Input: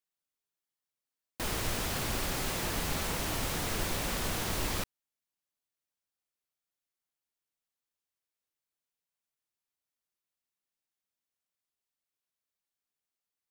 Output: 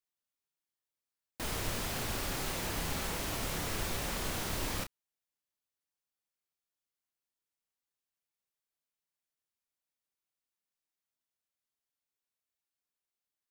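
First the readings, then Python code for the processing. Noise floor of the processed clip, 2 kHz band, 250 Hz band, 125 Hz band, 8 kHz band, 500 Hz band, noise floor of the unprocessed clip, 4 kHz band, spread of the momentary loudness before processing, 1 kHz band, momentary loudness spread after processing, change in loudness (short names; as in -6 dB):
under -85 dBFS, -2.5 dB, -3.0 dB, -2.5 dB, -2.5 dB, -2.5 dB, under -85 dBFS, -2.5 dB, 2 LU, -2.5 dB, 2 LU, -2.5 dB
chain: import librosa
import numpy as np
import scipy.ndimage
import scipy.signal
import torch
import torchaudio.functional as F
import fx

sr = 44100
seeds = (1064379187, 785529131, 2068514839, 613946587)

y = fx.doubler(x, sr, ms=30.0, db=-7)
y = y * 10.0 ** (-3.5 / 20.0)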